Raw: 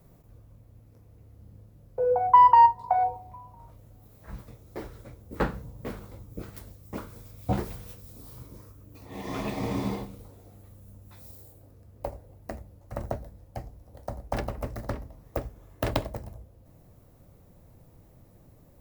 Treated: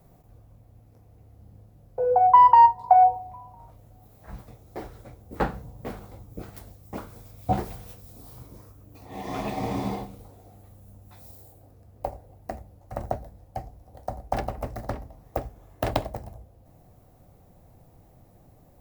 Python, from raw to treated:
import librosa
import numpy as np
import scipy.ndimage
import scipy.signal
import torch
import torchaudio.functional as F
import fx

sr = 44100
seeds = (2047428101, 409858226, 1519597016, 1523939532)

y = fx.peak_eq(x, sr, hz=750.0, db=9.0, octaves=0.33)